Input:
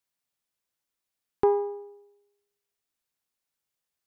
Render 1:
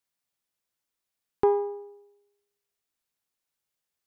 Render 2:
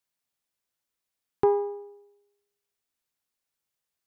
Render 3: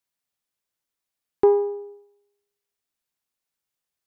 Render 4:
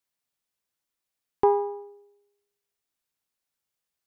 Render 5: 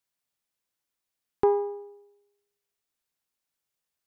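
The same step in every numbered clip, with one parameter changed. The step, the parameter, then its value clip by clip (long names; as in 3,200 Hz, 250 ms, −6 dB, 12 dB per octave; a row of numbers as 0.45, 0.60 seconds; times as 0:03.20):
dynamic equaliser, frequency: 3,000, 130, 370, 930, 8,000 Hertz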